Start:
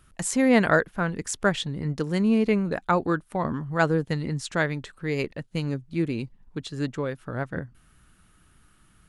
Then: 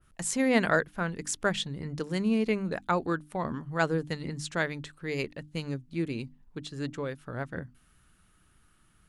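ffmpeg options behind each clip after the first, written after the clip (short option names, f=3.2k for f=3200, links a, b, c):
-af "bandreject=f=50:t=h:w=6,bandreject=f=100:t=h:w=6,bandreject=f=150:t=h:w=6,bandreject=f=200:t=h:w=6,bandreject=f=250:t=h:w=6,bandreject=f=300:t=h:w=6,adynamicequalizer=threshold=0.0126:dfrequency=2100:dqfactor=0.7:tfrequency=2100:tqfactor=0.7:attack=5:release=100:ratio=0.375:range=2:mode=boostabove:tftype=highshelf,volume=-5dB"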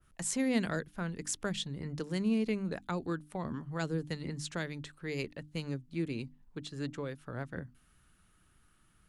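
-filter_complex "[0:a]acrossover=split=360|3000[a][b][c];[b]acompressor=threshold=-37dB:ratio=3[d];[a][d][c]amix=inputs=3:normalize=0,volume=-3dB"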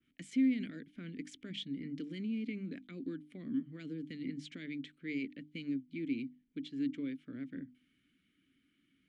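-filter_complex "[0:a]alimiter=level_in=5dB:limit=-24dB:level=0:latency=1:release=22,volume=-5dB,asplit=3[a][b][c];[a]bandpass=f=270:t=q:w=8,volume=0dB[d];[b]bandpass=f=2.29k:t=q:w=8,volume=-6dB[e];[c]bandpass=f=3.01k:t=q:w=8,volume=-9dB[f];[d][e][f]amix=inputs=3:normalize=0,volume=9.5dB"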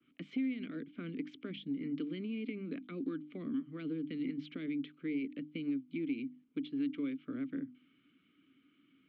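-filter_complex "[0:a]acrossover=split=320|660[a][b][c];[a]acompressor=threshold=-45dB:ratio=4[d];[b]acompressor=threshold=-51dB:ratio=4[e];[c]acompressor=threshold=-52dB:ratio=4[f];[d][e][f]amix=inputs=3:normalize=0,highpass=140,equalizer=f=200:t=q:w=4:g=-3,equalizer=f=290:t=q:w=4:g=3,equalizer=f=440:t=q:w=4:g=3,equalizer=f=1.2k:t=q:w=4:g=8,equalizer=f=1.8k:t=q:w=4:g=-8,lowpass=f=3.3k:w=0.5412,lowpass=f=3.3k:w=1.3066,volume=5.5dB"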